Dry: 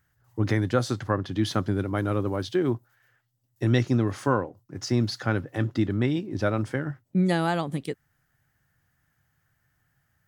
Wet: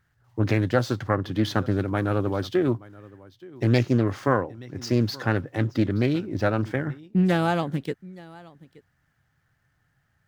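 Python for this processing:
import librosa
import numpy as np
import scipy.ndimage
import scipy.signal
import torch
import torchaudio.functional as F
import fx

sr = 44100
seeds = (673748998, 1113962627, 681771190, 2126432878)

y = scipy.signal.medfilt(x, 5)
y = y + 10.0 ** (-21.5 / 20.0) * np.pad(y, (int(875 * sr / 1000.0), 0))[:len(y)]
y = fx.doppler_dist(y, sr, depth_ms=0.31)
y = y * 10.0 ** (2.0 / 20.0)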